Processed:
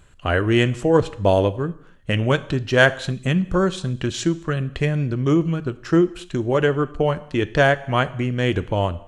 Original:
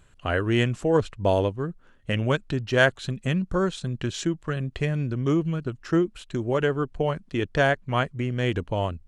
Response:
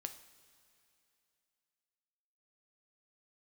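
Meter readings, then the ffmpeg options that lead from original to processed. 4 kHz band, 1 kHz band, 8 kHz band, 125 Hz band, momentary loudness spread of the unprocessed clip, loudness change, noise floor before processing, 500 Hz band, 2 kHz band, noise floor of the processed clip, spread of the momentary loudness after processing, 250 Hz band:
+5.0 dB, +5.0 dB, +5.0 dB, +4.5 dB, 8 LU, +5.0 dB, -55 dBFS, +5.0 dB, +5.0 dB, -47 dBFS, 8 LU, +5.0 dB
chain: -filter_complex "[0:a]asplit=2[a][b];[1:a]atrim=start_sample=2205,afade=t=out:st=0.31:d=0.01,atrim=end_sample=14112[c];[b][c]afir=irnorm=-1:irlink=0,volume=4dB[d];[a][d]amix=inputs=2:normalize=0,volume=-1.5dB"

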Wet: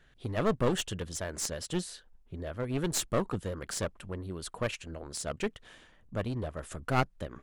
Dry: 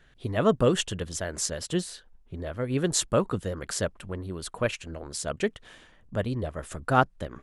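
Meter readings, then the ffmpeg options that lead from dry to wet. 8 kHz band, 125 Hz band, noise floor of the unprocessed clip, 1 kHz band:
-5.0 dB, -4.0 dB, -58 dBFS, -6.5 dB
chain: -af "aeval=exprs='clip(val(0),-1,0.0398)':c=same,volume=-3.5dB"

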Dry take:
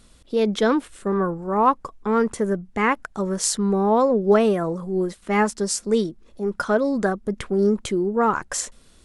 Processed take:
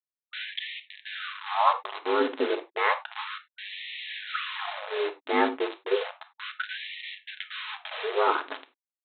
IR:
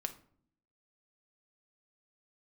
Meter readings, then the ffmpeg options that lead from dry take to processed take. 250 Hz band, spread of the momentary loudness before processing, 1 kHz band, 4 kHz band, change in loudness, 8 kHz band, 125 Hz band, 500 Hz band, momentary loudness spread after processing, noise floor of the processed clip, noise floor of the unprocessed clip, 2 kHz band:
-15.5 dB, 9 LU, -4.5 dB, +1.0 dB, -8.0 dB, under -40 dB, under -40 dB, -9.5 dB, 14 LU, under -85 dBFS, -53 dBFS, -1.5 dB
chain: -filter_complex "[0:a]asplit=2[a][b];[b]adelay=280,highpass=300,lowpass=3.4k,asoftclip=type=hard:threshold=-13.5dB,volume=-16dB[c];[a][c]amix=inputs=2:normalize=0,aeval=exprs='val(0)*sin(2*PI*50*n/s)':c=same,aresample=8000,acrusher=bits=4:mix=0:aa=0.000001,aresample=44100[d];[1:a]atrim=start_sample=2205,afade=t=out:st=0.15:d=0.01,atrim=end_sample=7056[e];[d][e]afir=irnorm=-1:irlink=0,afftfilt=real='re*gte(b*sr/1024,250*pow(1800/250,0.5+0.5*sin(2*PI*0.32*pts/sr)))':imag='im*gte(b*sr/1024,250*pow(1800/250,0.5+0.5*sin(2*PI*0.32*pts/sr)))':win_size=1024:overlap=0.75"

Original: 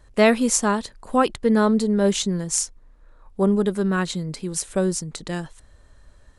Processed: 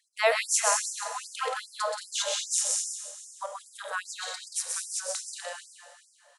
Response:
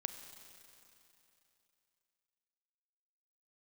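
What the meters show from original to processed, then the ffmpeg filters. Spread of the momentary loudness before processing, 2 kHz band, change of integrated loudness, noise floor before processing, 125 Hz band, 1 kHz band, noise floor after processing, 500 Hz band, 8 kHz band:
12 LU, -3.5 dB, -7.5 dB, -52 dBFS, under -40 dB, -6.0 dB, -63 dBFS, -11.5 dB, -0.5 dB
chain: -filter_complex "[0:a]aecho=1:1:128|179|217|328|464:0.668|0.562|0.335|0.237|0.1[a];[1:a]atrim=start_sample=2205,asetrate=57330,aresample=44100[b];[a][b]afir=irnorm=-1:irlink=0,afftfilt=real='re*gte(b*sr/1024,440*pow(4900/440,0.5+0.5*sin(2*PI*2.5*pts/sr)))':imag='im*gte(b*sr/1024,440*pow(4900/440,0.5+0.5*sin(2*PI*2.5*pts/sr)))':win_size=1024:overlap=0.75"

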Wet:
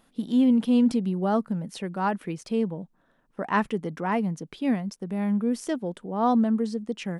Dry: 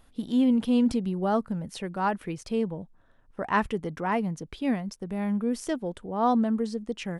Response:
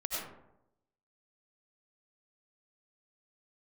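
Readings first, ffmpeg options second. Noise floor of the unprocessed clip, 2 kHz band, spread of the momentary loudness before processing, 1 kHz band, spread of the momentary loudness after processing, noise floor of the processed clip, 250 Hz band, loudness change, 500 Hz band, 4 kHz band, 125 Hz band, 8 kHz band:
-59 dBFS, 0.0 dB, 11 LU, 0.0 dB, 11 LU, -67 dBFS, +2.5 dB, +2.0 dB, +0.5 dB, 0.0 dB, +2.0 dB, 0.0 dB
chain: -af "lowshelf=f=120:t=q:w=1.5:g=-12"

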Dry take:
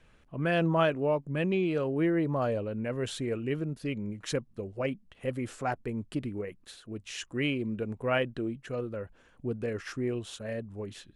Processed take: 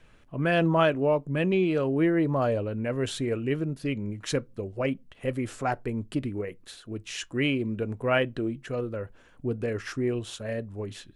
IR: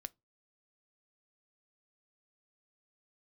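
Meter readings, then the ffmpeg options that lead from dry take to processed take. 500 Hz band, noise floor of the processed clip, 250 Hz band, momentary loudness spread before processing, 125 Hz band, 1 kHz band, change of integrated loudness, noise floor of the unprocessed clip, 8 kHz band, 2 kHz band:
+3.5 dB, -56 dBFS, +3.5 dB, 12 LU, +3.5 dB, +3.5 dB, +3.5 dB, -62 dBFS, +3.5 dB, +4.0 dB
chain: -filter_complex "[0:a]asplit=2[a][b];[1:a]atrim=start_sample=2205[c];[b][c]afir=irnorm=-1:irlink=0,volume=12dB[d];[a][d]amix=inputs=2:normalize=0,volume=-7dB"

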